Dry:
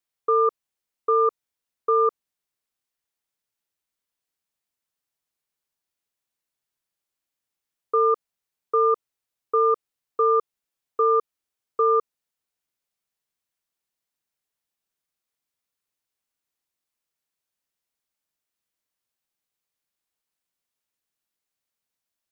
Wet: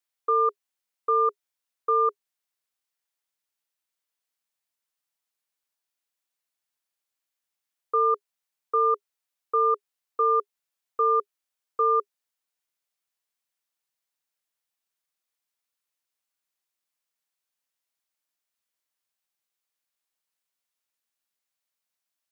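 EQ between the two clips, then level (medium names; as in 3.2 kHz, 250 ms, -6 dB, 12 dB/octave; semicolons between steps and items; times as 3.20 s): bass shelf 330 Hz -11.5 dB; band-stop 410 Hz, Q 12; 0.0 dB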